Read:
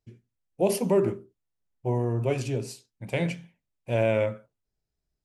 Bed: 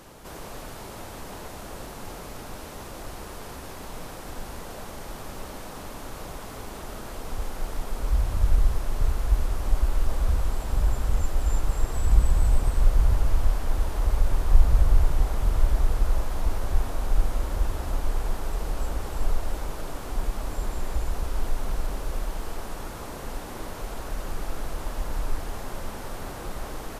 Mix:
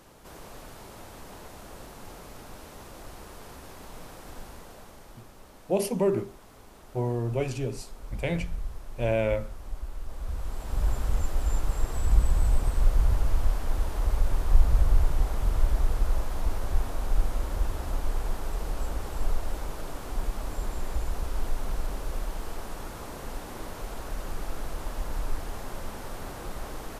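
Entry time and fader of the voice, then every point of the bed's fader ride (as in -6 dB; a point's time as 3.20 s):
5.10 s, -2.0 dB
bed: 4.39 s -6 dB
5.31 s -13.5 dB
10.04 s -13.5 dB
10.89 s -2.5 dB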